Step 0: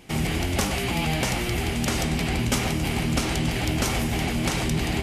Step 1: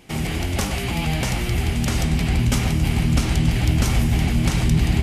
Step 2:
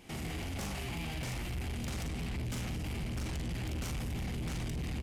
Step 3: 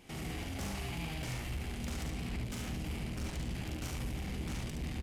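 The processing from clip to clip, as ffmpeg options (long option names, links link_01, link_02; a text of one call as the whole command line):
ffmpeg -i in.wav -af "asubboost=boost=3.5:cutoff=220" out.wav
ffmpeg -i in.wav -filter_complex "[0:a]asplit=2[link_01][link_02];[link_02]aecho=0:1:41|55:0.596|0.355[link_03];[link_01][link_03]amix=inputs=2:normalize=0,asoftclip=type=tanh:threshold=-20dB,alimiter=level_in=3dB:limit=-24dB:level=0:latency=1,volume=-3dB,volume=-6.5dB" out.wav
ffmpeg -i in.wav -af "aecho=1:1:71:0.596,volume=-2.5dB" out.wav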